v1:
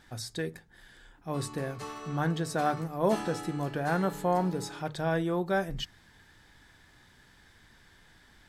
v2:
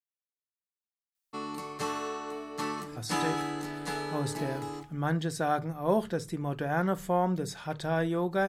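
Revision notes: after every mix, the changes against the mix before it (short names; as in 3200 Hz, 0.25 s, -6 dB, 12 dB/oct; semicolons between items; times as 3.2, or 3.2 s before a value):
speech: entry +2.85 s; background +7.5 dB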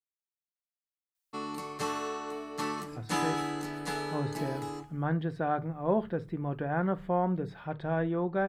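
speech: add air absorption 460 m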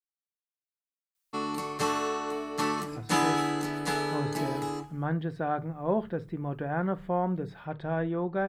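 background +5.0 dB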